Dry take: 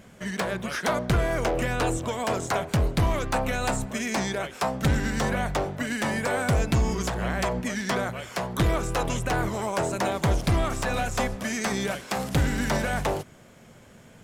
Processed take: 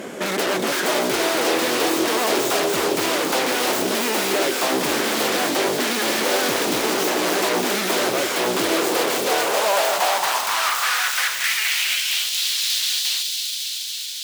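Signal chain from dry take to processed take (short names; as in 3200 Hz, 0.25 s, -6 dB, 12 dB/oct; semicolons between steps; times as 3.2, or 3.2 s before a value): tracing distortion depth 0.42 ms; in parallel at -5.5 dB: sine folder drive 18 dB, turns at -16 dBFS; on the sum: thin delay 0.277 s, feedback 81%, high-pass 3200 Hz, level -4 dB; high-pass sweep 340 Hz -> 3700 Hz, 8.92–12.49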